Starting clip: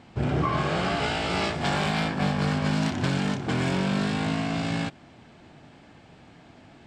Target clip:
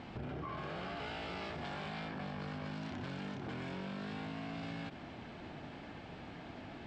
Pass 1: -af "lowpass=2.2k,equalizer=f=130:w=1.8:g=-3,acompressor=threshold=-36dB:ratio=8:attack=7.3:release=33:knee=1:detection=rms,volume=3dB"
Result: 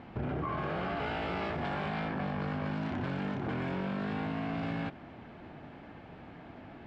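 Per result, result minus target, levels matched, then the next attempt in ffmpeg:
compressor: peak gain reduction -8 dB; 4000 Hz band -7.0 dB
-af "lowpass=2.2k,equalizer=f=130:w=1.8:g=-3,acompressor=threshold=-45dB:ratio=8:attack=7.3:release=33:knee=1:detection=rms,volume=3dB"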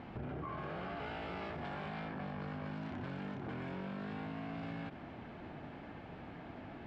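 4000 Hz band -6.0 dB
-af "lowpass=4.4k,equalizer=f=130:w=1.8:g=-3,acompressor=threshold=-45dB:ratio=8:attack=7.3:release=33:knee=1:detection=rms,volume=3dB"

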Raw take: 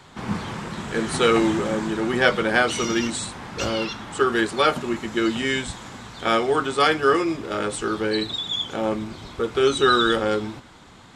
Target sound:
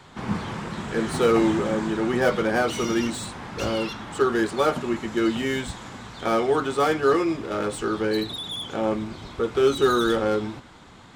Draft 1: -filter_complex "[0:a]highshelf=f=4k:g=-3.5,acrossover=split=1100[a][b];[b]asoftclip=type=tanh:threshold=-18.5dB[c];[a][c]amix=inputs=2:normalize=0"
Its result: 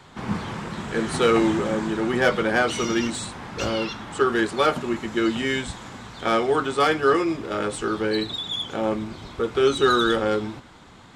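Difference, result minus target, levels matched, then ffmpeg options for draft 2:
soft clip: distortion -9 dB
-filter_complex "[0:a]highshelf=f=4k:g=-3.5,acrossover=split=1100[a][b];[b]asoftclip=type=tanh:threshold=-29dB[c];[a][c]amix=inputs=2:normalize=0"

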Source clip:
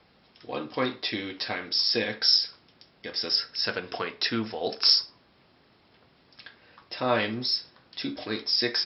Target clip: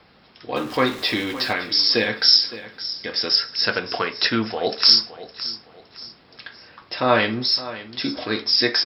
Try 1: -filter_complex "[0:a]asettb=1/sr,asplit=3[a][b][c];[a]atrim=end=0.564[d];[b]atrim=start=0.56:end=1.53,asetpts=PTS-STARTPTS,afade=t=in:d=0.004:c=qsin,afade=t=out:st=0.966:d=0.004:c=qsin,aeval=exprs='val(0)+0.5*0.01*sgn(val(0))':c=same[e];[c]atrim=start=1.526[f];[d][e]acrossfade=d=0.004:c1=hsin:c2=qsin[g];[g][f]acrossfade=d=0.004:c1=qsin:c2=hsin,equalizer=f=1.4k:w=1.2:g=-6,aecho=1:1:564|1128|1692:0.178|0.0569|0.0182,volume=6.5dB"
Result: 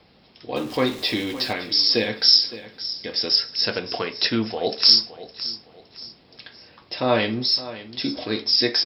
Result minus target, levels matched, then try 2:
1000 Hz band -4.0 dB
-filter_complex "[0:a]asettb=1/sr,asplit=3[a][b][c];[a]atrim=end=0.564[d];[b]atrim=start=0.56:end=1.53,asetpts=PTS-STARTPTS,afade=t=in:d=0.004:c=qsin,afade=t=out:st=0.966:d=0.004:c=qsin,aeval=exprs='val(0)+0.5*0.01*sgn(val(0))':c=same[e];[c]atrim=start=1.526[f];[d][e]acrossfade=d=0.004:c1=hsin:c2=qsin[g];[g][f]acrossfade=d=0.004:c1=qsin:c2=hsin,equalizer=f=1.4k:w=1.2:g=2.5,aecho=1:1:564|1128|1692:0.178|0.0569|0.0182,volume=6.5dB"

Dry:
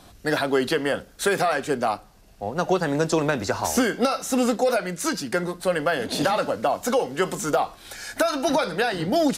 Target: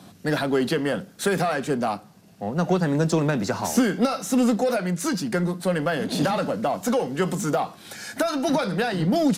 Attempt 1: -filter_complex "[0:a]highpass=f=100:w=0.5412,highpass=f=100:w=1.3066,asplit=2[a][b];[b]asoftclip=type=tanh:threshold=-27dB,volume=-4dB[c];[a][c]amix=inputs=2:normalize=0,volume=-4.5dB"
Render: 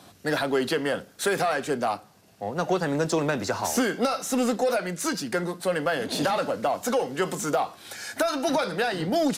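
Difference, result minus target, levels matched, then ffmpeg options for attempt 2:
250 Hz band -3.0 dB
-filter_complex "[0:a]highpass=f=100:w=0.5412,highpass=f=100:w=1.3066,equalizer=f=180:t=o:w=1.2:g=10.5,asplit=2[a][b];[b]asoftclip=type=tanh:threshold=-27dB,volume=-4dB[c];[a][c]amix=inputs=2:normalize=0,volume=-4.5dB"

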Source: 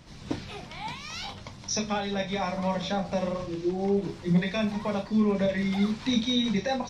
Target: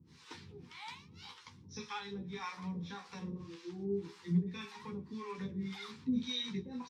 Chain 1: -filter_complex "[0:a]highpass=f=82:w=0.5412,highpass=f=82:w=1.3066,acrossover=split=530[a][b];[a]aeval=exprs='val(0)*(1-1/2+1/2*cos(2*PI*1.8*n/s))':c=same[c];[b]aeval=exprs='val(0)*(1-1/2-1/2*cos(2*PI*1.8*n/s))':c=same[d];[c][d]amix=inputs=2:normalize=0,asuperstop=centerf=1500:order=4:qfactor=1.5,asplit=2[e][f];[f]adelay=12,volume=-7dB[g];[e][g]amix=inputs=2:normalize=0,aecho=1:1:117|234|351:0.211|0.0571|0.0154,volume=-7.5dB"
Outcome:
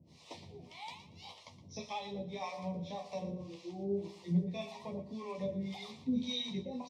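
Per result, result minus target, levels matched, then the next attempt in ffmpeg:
echo-to-direct +11.5 dB; 2000 Hz band -4.0 dB
-filter_complex "[0:a]highpass=f=82:w=0.5412,highpass=f=82:w=1.3066,acrossover=split=530[a][b];[a]aeval=exprs='val(0)*(1-1/2+1/2*cos(2*PI*1.8*n/s))':c=same[c];[b]aeval=exprs='val(0)*(1-1/2-1/2*cos(2*PI*1.8*n/s))':c=same[d];[c][d]amix=inputs=2:normalize=0,asuperstop=centerf=1500:order=4:qfactor=1.5,asplit=2[e][f];[f]adelay=12,volume=-7dB[g];[e][g]amix=inputs=2:normalize=0,aecho=1:1:117|234:0.0562|0.0152,volume=-7.5dB"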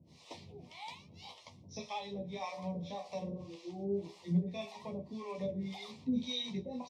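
2000 Hz band -4.0 dB
-filter_complex "[0:a]highpass=f=82:w=0.5412,highpass=f=82:w=1.3066,acrossover=split=530[a][b];[a]aeval=exprs='val(0)*(1-1/2+1/2*cos(2*PI*1.8*n/s))':c=same[c];[b]aeval=exprs='val(0)*(1-1/2-1/2*cos(2*PI*1.8*n/s))':c=same[d];[c][d]amix=inputs=2:normalize=0,asuperstop=centerf=630:order=4:qfactor=1.5,asplit=2[e][f];[f]adelay=12,volume=-7dB[g];[e][g]amix=inputs=2:normalize=0,aecho=1:1:117|234:0.0562|0.0152,volume=-7.5dB"

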